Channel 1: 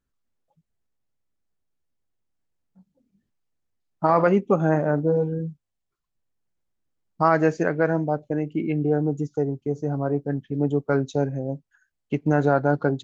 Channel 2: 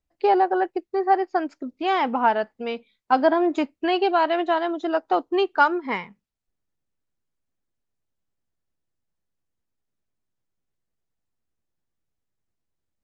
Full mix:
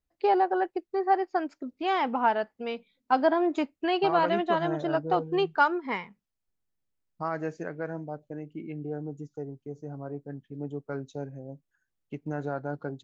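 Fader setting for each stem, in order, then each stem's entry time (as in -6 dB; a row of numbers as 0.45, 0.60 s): -13.0, -4.5 dB; 0.00, 0.00 s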